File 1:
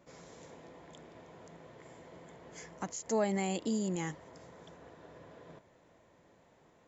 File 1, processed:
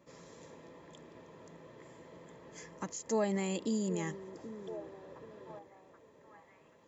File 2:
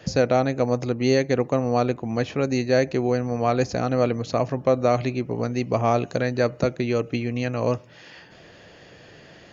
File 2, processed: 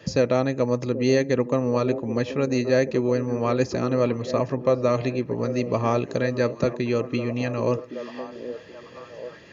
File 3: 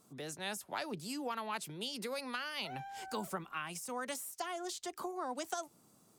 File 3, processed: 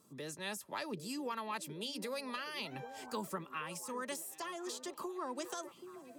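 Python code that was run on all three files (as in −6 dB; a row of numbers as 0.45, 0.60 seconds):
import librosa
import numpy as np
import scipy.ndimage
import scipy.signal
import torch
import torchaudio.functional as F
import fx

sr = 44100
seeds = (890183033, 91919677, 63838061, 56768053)

y = fx.notch_comb(x, sr, f0_hz=730.0)
y = fx.echo_stepped(y, sr, ms=779, hz=340.0, octaves=0.7, feedback_pct=70, wet_db=-8.5)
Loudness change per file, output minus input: −2.0, −0.5, −1.0 LU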